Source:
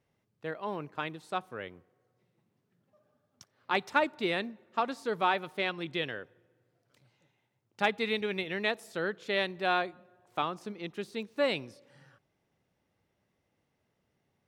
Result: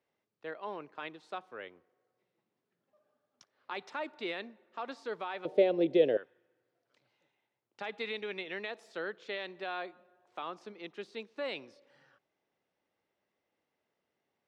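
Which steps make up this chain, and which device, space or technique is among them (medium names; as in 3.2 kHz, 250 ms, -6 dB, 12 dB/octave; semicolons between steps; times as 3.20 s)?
DJ mixer with the lows and highs turned down (three-band isolator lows -16 dB, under 260 Hz, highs -20 dB, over 6.4 kHz; peak limiter -24.5 dBFS, peak gain reduction 11.5 dB); 5.45–6.17 s: resonant low shelf 800 Hz +13 dB, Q 3; trim -3.5 dB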